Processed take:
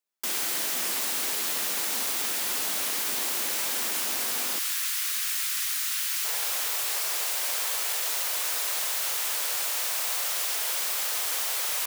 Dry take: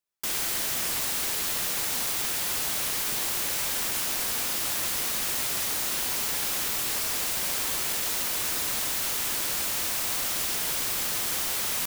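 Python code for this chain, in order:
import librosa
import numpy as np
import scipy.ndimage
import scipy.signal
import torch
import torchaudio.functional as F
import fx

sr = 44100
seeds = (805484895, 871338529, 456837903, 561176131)

y = fx.highpass(x, sr, hz=fx.steps((0.0, 200.0), (4.59, 1300.0), (6.25, 470.0)), slope=24)
y = fx.rev_spring(y, sr, rt60_s=2.6, pass_ms=(51,), chirp_ms=50, drr_db=16.5)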